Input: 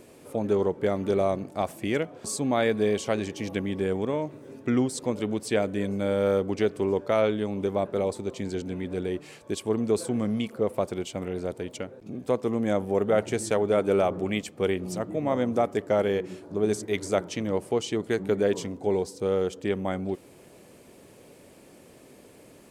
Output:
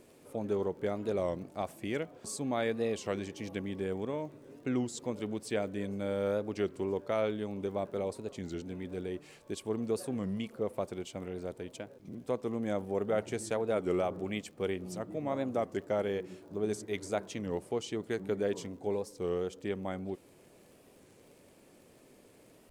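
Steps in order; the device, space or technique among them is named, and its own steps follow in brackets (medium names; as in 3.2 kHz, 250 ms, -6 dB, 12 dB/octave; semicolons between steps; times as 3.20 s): warped LP (warped record 33 1/3 rpm, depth 160 cents; crackle 40 per s -44 dBFS; pink noise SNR 42 dB); trim -8 dB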